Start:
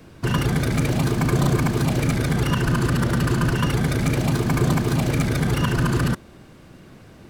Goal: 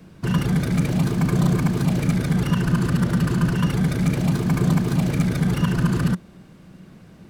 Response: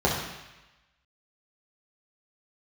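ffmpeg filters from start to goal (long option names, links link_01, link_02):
-af "equalizer=frequency=180:width_type=o:width=0.41:gain=12,volume=-4dB"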